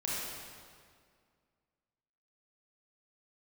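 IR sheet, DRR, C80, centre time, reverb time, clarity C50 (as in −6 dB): −7.0 dB, −1.0 dB, 134 ms, 2.0 s, −3.5 dB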